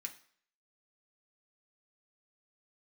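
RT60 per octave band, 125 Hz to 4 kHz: 0.40, 0.50, 0.55, 0.55, 0.55, 0.55 s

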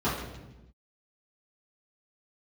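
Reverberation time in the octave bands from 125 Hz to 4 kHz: 1.3, 1.4, 1.1, 0.90, 0.90, 0.85 s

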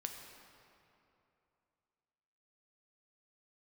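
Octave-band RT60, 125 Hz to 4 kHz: 3.0, 2.9, 2.9, 2.8, 2.4, 1.8 s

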